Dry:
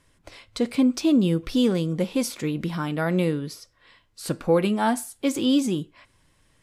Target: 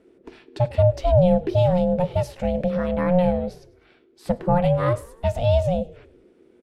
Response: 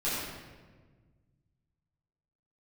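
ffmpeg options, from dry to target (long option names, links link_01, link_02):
-filter_complex "[0:a]bass=frequency=250:gain=12,treble=frequency=4000:gain=-12,aeval=exprs='val(0)*sin(2*PI*360*n/s)':channel_layout=same,asplit=5[link_01][link_02][link_03][link_04][link_05];[link_02]adelay=101,afreqshift=-42,volume=-22dB[link_06];[link_03]adelay=202,afreqshift=-84,volume=-26.9dB[link_07];[link_04]adelay=303,afreqshift=-126,volume=-31.8dB[link_08];[link_05]adelay=404,afreqshift=-168,volume=-36.6dB[link_09];[link_01][link_06][link_07][link_08][link_09]amix=inputs=5:normalize=0"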